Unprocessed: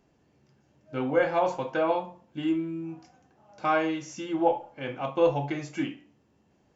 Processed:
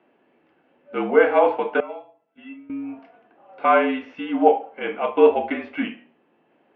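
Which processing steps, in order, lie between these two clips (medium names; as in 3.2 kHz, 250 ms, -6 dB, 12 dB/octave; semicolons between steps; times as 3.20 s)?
mistuned SSB -51 Hz 330–3100 Hz; 1.80–2.70 s: feedback comb 670 Hz, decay 0.25 s, harmonics all, mix 90%; trim +8.5 dB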